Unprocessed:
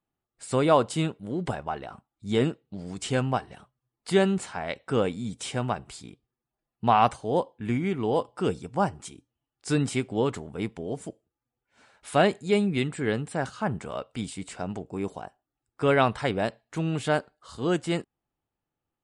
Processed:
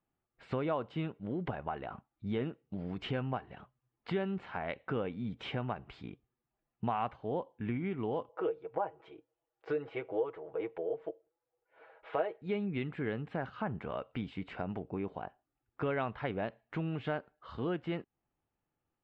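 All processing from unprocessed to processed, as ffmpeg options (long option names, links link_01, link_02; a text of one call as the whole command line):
ffmpeg -i in.wav -filter_complex "[0:a]asettb=1/sr,asplit=3[link_01][link_02][link_03];[link_01]atrim=end=8.294[link_04];[link_02]atrim=start=8.29:end=12.42,asetpts=PTS-STARTPTS,afade=type=in:duration=0.004:curve=qsin,afade=type=out:start_time=4.126:duration=0.004:curve=qsin,lowpass=frequency=1500:poles=1,lowshelf=frequency=310:width_type=q:width=3:gain=-13,aecho=1:1:6.2:0.68,atrim=end_sample=182133[link_05];[link_03]atrim=start=12.416[link_06];[link_04][link_05]acrossfade=duration=0.004:curve1=hsin:curve2=qsin[link_07];[link_07][link_06]acrossfade=duration=0.004:curve1=qsin:curve2=hsin,lowpass=frequency=2900:width=0.5412,lowpass=frequency=2900:width=1.3066,acompressor=threshold=-35dB:ratio=3" out.wav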